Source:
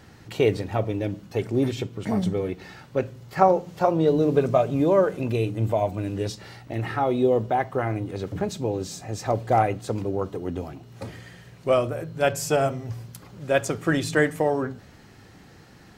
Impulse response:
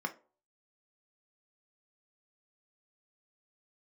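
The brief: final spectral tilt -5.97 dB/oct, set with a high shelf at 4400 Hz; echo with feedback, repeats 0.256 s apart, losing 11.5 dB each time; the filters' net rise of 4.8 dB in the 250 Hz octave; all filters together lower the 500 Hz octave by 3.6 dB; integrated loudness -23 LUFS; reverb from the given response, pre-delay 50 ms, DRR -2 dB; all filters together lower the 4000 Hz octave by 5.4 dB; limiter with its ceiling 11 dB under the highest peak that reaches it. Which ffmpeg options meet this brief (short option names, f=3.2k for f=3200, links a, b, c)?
-filter_complex "[0:a]equalizer=f=250:t=o:g=8.5,equalizer=f=500:t=o:g=-7,equalizer=f=4k:t=o:g=-4.5,highshelf=f=4.4k:g=-5,alimiter=limit=-16dB:level=0:latency=1,aecho=1:1:256|512|768:0.266|0.0718|0.0194,asplit=2[a][b];[1:a]atrim=start_sample=2205,adelay=50[c];[b][c]afir=irnorm=-1:irlink=0,volume=-2dB[d];[a][d]amix=inputs=2:normalize=0,volume=0.5dB"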